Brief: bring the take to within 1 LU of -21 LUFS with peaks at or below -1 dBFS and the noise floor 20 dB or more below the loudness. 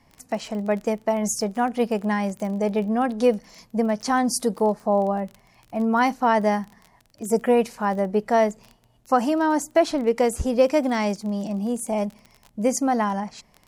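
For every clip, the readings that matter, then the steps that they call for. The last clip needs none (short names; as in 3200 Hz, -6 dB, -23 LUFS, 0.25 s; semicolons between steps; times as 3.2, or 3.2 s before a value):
ticks 24/s; loudness -23.5 LUFS; peak -7.0 dBFS; loudness target -21.0 LUFS
-> de-click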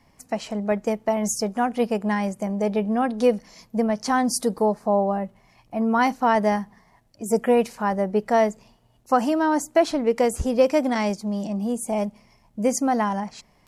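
ticks 0.073/s; loudness -23.5 LUFS; peak -7.0 dBFS; loudness target -21.0 LUFS
-> gain +2.5 dB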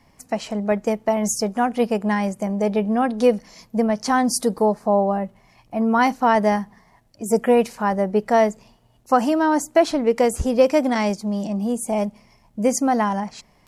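loudness -21.0 LUFS; peak -4.5 dBFS; noise floor -57 dBFS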